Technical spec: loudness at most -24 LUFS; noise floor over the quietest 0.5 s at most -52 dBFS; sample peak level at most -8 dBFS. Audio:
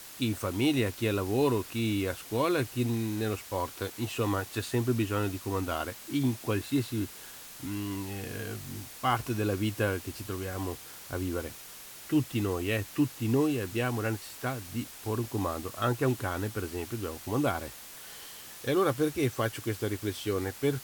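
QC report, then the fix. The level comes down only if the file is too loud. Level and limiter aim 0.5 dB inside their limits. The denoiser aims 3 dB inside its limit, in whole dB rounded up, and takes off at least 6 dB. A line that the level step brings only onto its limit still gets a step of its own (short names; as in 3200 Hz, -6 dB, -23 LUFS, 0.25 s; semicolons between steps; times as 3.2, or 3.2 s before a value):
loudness -31.5 LUFS: OK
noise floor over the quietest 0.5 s -47 dBFS: fail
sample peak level -13.0 dBFS: OK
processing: denoiser 8 dB, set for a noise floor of -47 dBFS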